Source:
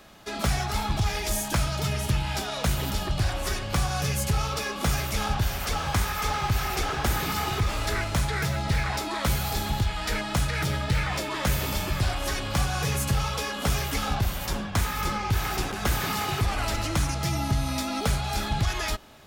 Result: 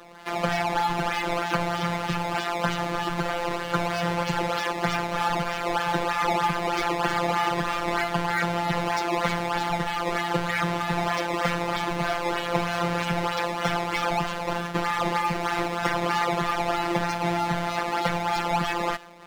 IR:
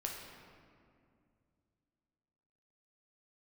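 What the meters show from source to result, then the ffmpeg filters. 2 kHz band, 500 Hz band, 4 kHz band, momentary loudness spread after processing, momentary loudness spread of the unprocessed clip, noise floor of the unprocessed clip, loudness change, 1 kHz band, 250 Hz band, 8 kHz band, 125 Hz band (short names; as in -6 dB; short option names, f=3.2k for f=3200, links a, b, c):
+3.5 dB, +6.0 dB, -1.5 dB, 3 LU, 2 LU, -33 dBFS, +1.5 dB, +6.0 dB, +2.5 dB, -8.0 dB, -6.0 dB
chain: -filter_complex "[0:a]aresample=22050,aresample=44100,acrusher=samples=17:mix=1:aa=0.000001:lfo=1:lforange=27.2:lforate=3.2,afftfilt=real='hypot(re,im)*cos(PI*b)':imag='0':win_size=1024:overlap=0.75,asplit=2[a][b];[b]highpass=f=720:p=1,volume=17dB,asoftclip=type=tanh:threshold=-7dB[c];[a][c]amix=inputs=2:normalize=0,lowpass=f=2.3k:p=1,volume=-6dB,volume=1.5dB"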